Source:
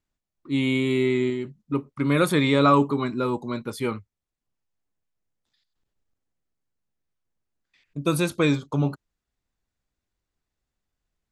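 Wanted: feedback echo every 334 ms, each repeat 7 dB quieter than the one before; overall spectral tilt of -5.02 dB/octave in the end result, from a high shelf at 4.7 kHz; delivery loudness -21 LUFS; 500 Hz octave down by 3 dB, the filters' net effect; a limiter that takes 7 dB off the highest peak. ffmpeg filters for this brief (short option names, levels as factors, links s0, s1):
-af "equalizer=f=500:t=o:g=-4,highshelf=f=4700:g=9,alimiter=limit=0.188:level=0:latency=1,aecho=1:1:334|668|1002|1336|1670:0.447|0.201|0.0905|0.0407|0.0183,volume=1.78"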